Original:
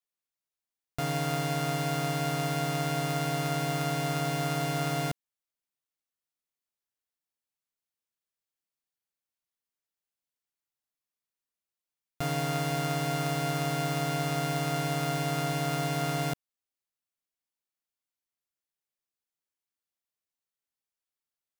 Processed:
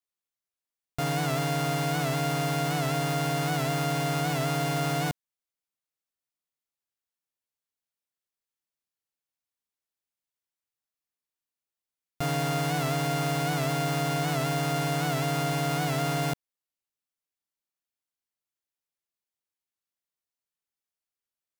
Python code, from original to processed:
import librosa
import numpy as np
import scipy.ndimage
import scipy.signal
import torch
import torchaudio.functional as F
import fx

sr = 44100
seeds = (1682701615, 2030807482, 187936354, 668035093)

y = fx.leveller(x, sr, passes=1)
y = fx.record_warp(y, sr, rpm=78.0, depth_cents=100.0)